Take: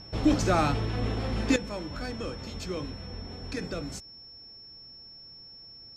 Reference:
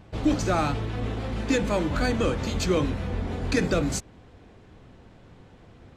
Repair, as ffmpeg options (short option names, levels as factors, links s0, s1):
-af "bandreject=f=5400:w=30,asetnsamples=n=441:p=0,asendcmd='1.56 volume volume 11dB',volume=1"